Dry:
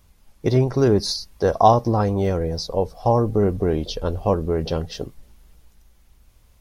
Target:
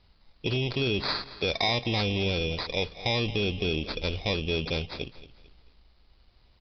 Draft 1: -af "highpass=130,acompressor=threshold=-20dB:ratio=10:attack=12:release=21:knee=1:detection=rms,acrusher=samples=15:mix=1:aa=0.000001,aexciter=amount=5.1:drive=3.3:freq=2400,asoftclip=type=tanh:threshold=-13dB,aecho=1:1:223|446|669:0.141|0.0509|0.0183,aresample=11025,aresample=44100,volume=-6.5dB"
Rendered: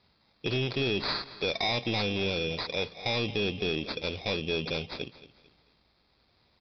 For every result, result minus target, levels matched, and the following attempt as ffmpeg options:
soft clipping: distortion +11 dB; 125 Hz band −3.0 dB
-af "highpass=130,acompressor=threshold=-20dB:ratio=10:attack=12:release=21:knee=1:detection=rms,acrusher=samples=15:mix=1:aa=0.000001,aexciter=amount=5.1:drive=3.3:freq=2400,asoftclip=type=tanh:threshold=-4dB,aecho=1:1:223|446|669:0.141|0.0509|0.0183,aresample=11025,aresample=44100,volume=-6.5dB"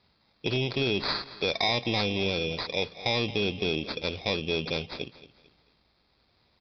125 Hz band −3.5 dB
-af "acompressor=threshold=-20dB:ratio=10:attack=12:release=21:knee=1:detection=rms,acrusher=samples=15:mix=1:aa=0.000001,aexciter=amount=5.1:drive=3.3:freq=2400,asoftclip=type=tanh:threshold=-4dB,aecho=1:1:223|446|669:0.141|0.0509|0.0183,aresample=11025,aresample=44100,volume=-6.5dB"

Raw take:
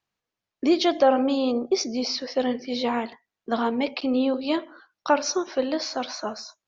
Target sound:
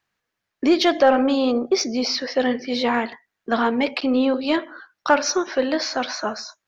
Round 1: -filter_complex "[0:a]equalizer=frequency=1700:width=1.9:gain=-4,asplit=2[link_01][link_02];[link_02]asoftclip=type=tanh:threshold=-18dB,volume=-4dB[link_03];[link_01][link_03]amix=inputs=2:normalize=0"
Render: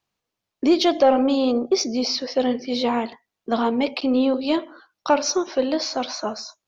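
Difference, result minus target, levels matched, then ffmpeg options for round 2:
2,000 Hz band −7.0 dB
-filter_complex "[0:a]equalizer=frequency=1700:width=1.9:gain=7.5,asplit=2[link_01][link_02];[link_02]asoftclip=type=tanh:threshold=-18dB,volume=-4dB[link_03];[link_01][link_03]amix=inputs=2:normalize=0"

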